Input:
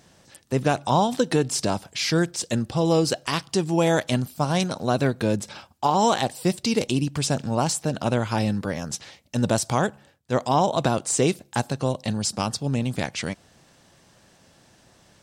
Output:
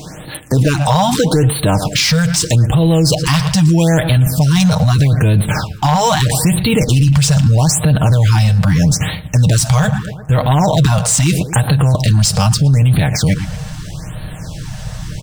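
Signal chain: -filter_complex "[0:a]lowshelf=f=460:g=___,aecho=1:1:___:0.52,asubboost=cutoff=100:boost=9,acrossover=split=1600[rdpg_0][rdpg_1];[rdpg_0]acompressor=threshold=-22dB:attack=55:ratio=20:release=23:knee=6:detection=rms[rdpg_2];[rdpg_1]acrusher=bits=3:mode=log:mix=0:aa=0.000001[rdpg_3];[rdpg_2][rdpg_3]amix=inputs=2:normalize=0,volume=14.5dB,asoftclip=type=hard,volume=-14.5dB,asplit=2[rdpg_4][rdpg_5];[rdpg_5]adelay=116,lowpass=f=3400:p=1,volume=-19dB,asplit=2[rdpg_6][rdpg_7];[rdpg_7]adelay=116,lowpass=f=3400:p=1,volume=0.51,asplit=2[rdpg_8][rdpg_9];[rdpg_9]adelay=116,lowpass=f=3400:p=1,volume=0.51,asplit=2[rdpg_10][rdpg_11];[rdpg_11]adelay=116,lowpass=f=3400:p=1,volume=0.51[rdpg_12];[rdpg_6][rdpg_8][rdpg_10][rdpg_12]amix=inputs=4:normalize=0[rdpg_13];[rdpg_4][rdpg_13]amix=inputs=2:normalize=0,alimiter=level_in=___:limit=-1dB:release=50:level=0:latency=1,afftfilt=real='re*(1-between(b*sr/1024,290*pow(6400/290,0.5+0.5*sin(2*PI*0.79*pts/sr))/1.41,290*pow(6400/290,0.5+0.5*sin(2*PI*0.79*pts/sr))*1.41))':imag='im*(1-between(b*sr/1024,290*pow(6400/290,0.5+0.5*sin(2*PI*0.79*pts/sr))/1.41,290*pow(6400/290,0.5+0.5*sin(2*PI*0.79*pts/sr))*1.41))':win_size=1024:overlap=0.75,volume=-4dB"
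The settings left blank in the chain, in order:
4.5, 6.5, 25dB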